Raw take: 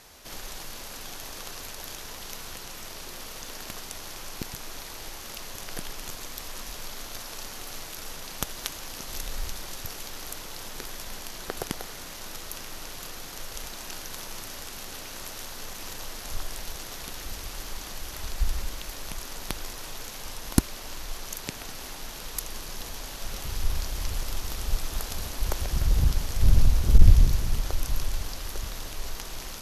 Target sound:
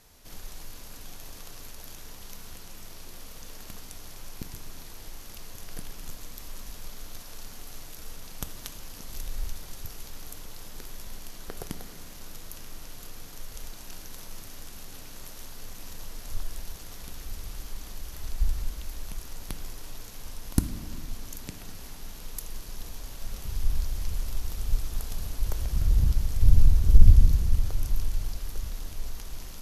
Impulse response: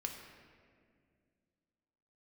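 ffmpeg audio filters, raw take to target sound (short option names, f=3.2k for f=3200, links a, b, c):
-filter_complex "[0:a]lowshelf=f=240:g=11,asplit=2[a][b];[1:a]atrim=start_sample=2205,highshelf=f=6.2k:g=10.5[c];[b][c]afir=irnorm=-1:irlink=0,volume=0.5dB[d];[a][d]amix=inputs=2:normalize=0,volume=-15dB"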